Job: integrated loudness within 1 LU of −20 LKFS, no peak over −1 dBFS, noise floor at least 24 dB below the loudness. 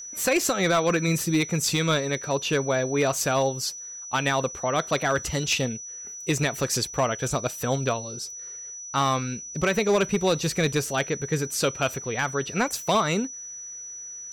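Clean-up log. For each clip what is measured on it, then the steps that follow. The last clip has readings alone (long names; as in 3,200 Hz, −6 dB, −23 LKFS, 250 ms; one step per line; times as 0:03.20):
share of clipped samples 0.8%; peaks flattened at −15.5 dBFS; interfering tone 5,900 Hz; level of the tone −36 dBFS; integrated loudness −25.0 LKFS; sample peak −15.5 dBFS; target loudness −20.0 LKFS
→ clipped peaks rebuilt −15.5 dBFS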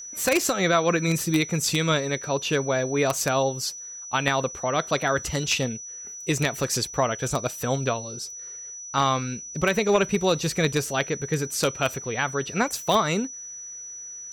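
share of clipped samples 0.0%; interfering tone 5,900 Hz; level of the tone −36 dBFS
→ notch filter 5,900 Hz, Q 30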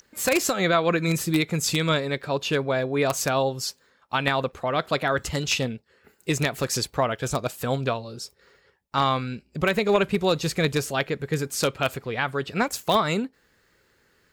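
interfering tone none found; integrated loudness −25.0 LKFS; sample peak −6.5 dBFS; target loudness −20.0 LKFS
→ level +5 dB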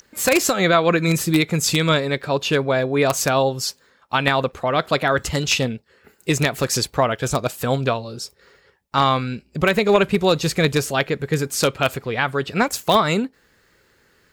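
integrated loudness −20.0 LKFS; sample peak −1.5 dBFS; background noise floor −60 dBFS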